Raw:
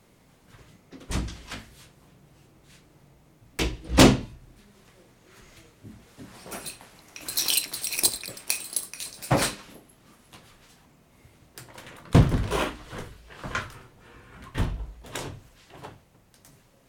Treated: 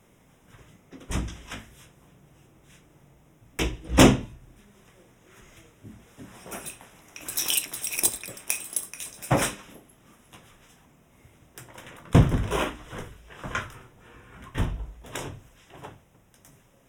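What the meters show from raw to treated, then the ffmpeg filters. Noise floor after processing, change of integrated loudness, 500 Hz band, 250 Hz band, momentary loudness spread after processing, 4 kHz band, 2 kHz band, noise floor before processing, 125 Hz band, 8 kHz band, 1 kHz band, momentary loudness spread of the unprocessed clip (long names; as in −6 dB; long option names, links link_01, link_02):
−59 dBFS, −0.5 dB, 0.0 dB, 0.0 dB, 24 LU, −3.0 dB, 0.0 dB, −59 dBFS, 0.0 dB, 0.0 dB, 0.0 dB, 22 LU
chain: -af "asuperstop=centerf=4400:order=4:qfactor=3.1"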